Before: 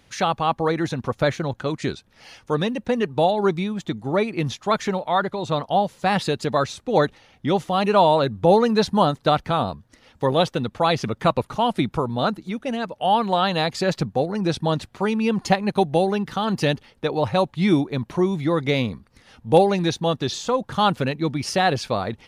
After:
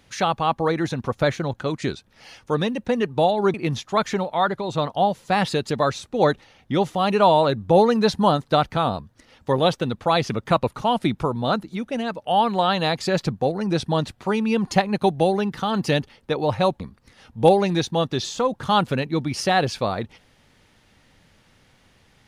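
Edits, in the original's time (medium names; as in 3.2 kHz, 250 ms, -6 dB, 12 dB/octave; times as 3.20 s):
3.54–4.28 s: delete
17.54–18.89 s: delete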